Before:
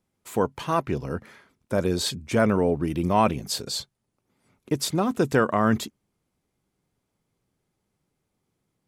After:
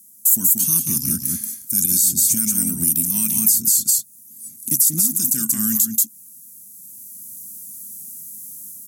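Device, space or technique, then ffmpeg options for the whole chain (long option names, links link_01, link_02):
FM broadcast chain: -filter_complex "[0:a]highpass=57,firequalizer=gain_entry='entry(110,0);entry(230,12);entry(450,-25);entry(1500,-12);entry(3400,-5);entry(6400,14)':delay=0.05:min_phase=1,aecho=1:1:183:0.398,dynaudnorm=framelen=670:gausssize=3:maxgain=12dB,acrossover=split=590|1600|6500[link_01][link_02][link_03][link_04];[link_01]acompressor=threshold=-25dB:ratio=4[link_05];[link_02]acompressor=threshold=-48dB:ratio=4[link_06];[link_03]acompressor=threshold=-32dB:ratio=4[link_07];[link_04]acompressor=threshold=-30dB:ratio=4[link_08];[link_05][link_06][link_07][link_08]amix=inputs=4:normalize=0,aemphasis=mode=production:type=50fm,alimiter=limit=-17.5dB:level=0:latency=1:release=176,asoftclip=type=hard:threshold=-19.5dB,lowpass=frequency=15000:width=0.5412,lowpass=frequency=15000:width=1.3066,aemphasis=mode=production:type=50fm,volume=2.5dB"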